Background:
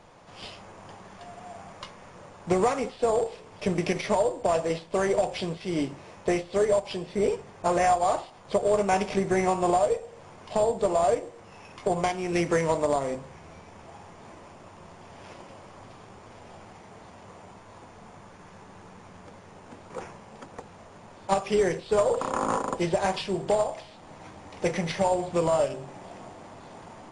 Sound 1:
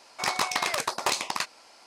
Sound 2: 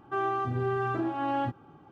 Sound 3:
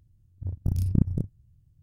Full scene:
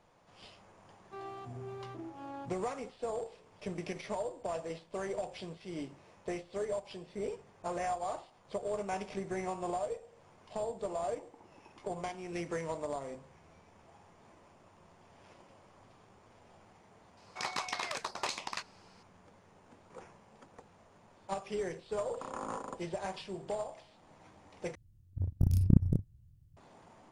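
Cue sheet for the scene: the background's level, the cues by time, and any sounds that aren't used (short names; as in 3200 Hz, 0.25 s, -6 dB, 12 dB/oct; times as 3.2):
background -13 dB
1 add 2 -14 dB + Wiener smoothing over 25 samples
10.78 add 1 -13 dB + vocal tract filter u
17.17 add 1 -9.5 dB + LPF 7400 Hz
24.75 replace with 3 -1.5 dB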